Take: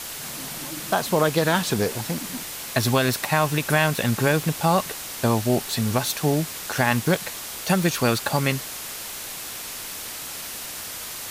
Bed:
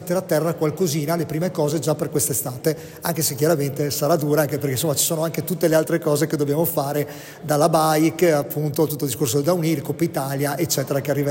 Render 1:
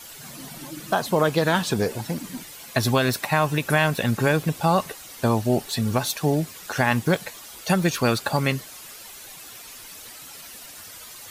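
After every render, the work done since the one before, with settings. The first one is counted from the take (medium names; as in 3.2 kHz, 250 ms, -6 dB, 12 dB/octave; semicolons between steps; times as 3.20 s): noise reduction 11 dB, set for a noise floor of -35 dBFS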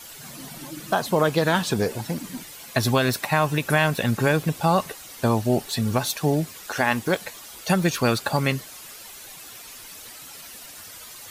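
6.62–7.25 s: peaking EQ 140 Hz -10.5 dB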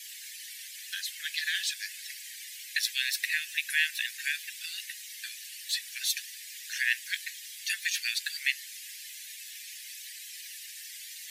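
steep high-pass 1.7 kHz 96 dB/octave; treble shelf 9.7 kHz -5.5 dB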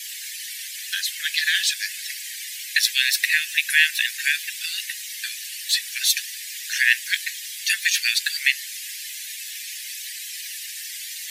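trim +10 dB; peak limiter -3 dBFS, peak gain reduction 2 dB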